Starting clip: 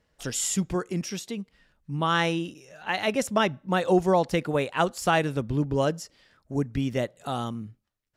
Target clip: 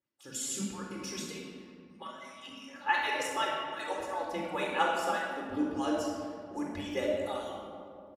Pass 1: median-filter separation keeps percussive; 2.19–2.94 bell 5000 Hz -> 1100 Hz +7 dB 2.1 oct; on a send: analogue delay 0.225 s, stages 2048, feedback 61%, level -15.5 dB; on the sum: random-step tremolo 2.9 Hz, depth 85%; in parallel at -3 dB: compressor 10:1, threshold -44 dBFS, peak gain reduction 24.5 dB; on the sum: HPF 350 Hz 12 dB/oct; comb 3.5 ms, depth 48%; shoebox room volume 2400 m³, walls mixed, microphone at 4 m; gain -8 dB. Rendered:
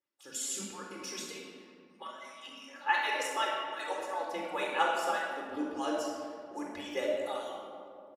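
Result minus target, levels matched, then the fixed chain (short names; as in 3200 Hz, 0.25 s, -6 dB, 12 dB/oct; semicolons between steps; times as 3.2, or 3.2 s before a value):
125 Hz band -10.5 dB
median-filter separation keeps percussive; 2.19–2.94 bell 5000 Hz -> 1100 Hz +7 dB 2.1 oct; on a send: analogue delay 0.225 s, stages 2048, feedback 61%, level -15.5 dB; on the sum: random-step tremolo 2.9 Hz, depth 85%; in parallel at -3 dB: compressor 10:1, threshold -44 dBFS, peak gain reduction 24.5 dB; on the sum: HPF 130 Hz 12 dB/oct; comb 3.5 ms, depth 48%; shoebox room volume 2400 m³, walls mixed, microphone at 4 m; gain -8 dB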